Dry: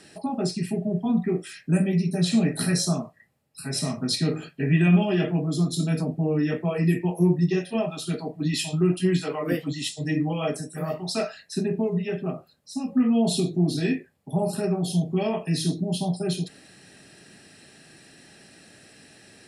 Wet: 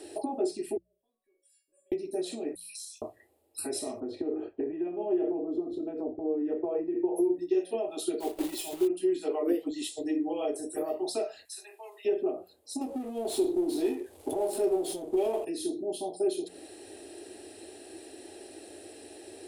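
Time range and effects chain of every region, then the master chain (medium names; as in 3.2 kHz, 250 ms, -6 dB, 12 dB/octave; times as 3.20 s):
0.77–1.92 s: pre-emphasis filter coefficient 0.9 + compression 5:1, threshold -46 dBFS + feedback comb 560 Hz, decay 0.33 s, mix 100%
2.55–3.02 s: steep high-pass 2.4 kHz 96 dB/octave + compression 4:1, threshold -42 dBFS
4.00–7.16 s: low-pass 1.3 kHz + compression 2.5:1, threshold -25 dBFS
8.20–8.89 s: block-companded coder 3-bit + comb 5.2 ms, depth 37%
11.45–12.05 s: high-pass 1.1 kHz 24 dB/octave + treble shelf 5.2 kHz +6.5 dB + compression 2:1, threshold -46 dBFS
12.81–15.45 s: CVSD coder 64 kbps + hum notches 50/100/150/200 Hz + power-law waveshaper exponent 0.7
whole clip: hum notches 60/120/180 Hz; compression 6:1, threshold -34 dBFS; FFT filter 100 Hz 0 dB, 150 Hz -29 dB, 340 Hz +14 dB, 530 Hz +7 dB, 800 Hz +6 dB, 1.2 kHz -5 dB, 1.7 kHz -7 dB, 3.6 kHz 0 dB, 5.6 kHz -4 dB, 9.4 kHz +5 dB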